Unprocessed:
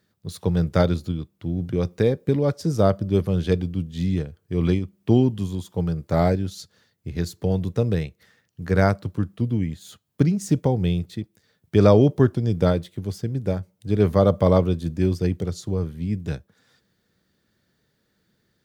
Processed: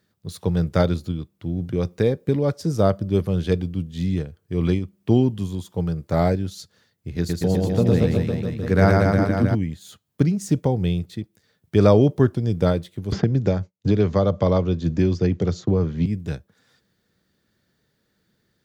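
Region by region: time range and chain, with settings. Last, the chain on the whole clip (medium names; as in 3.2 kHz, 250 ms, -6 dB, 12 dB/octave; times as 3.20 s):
7.18–9.55 s: high-pass 48 Hz + peaking EQ 260 Hz +4.5 dB 0.93 oct + reverse bouncing-ball echo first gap 110 ms, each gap 1.1×, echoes 6, each echo -2 dB
13.12–16.06 s: steep low-pass 7.2 kHz 72 dB/octave + expander -40 dBFS + three bands compressed up and down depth 100%
whole clip: none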